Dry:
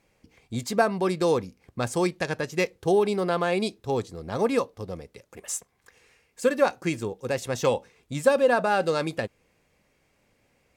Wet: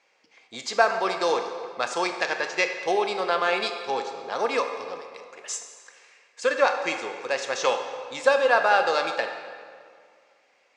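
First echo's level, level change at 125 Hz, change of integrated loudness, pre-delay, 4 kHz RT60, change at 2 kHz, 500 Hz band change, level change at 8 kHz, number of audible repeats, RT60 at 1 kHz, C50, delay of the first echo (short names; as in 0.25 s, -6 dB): none, under -15 dB, +1.0 dB, 20 ms, 1.5 s, +6.0 dB, -1.0 dB, 0.0 dB, none, 2.1 s, 7.0 dB, none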